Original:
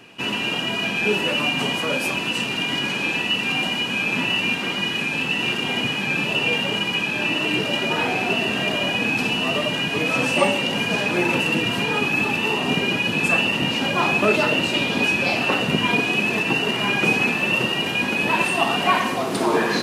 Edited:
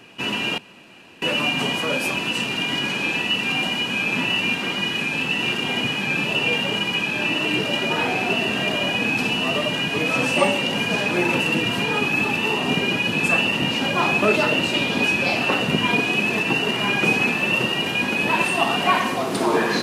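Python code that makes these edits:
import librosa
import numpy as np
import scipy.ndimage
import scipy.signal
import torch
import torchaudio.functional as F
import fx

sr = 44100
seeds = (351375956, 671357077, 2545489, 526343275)

y = fx.edit(x, sr, fx.room_tone_fill(start_s=0.58, length_s=0.64), tone=tone)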